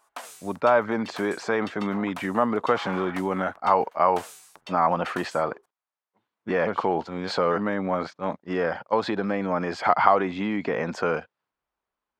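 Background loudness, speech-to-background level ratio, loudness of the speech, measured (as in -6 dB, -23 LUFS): -42.5 LUFS, 17.0 dB, -25.5 LUFS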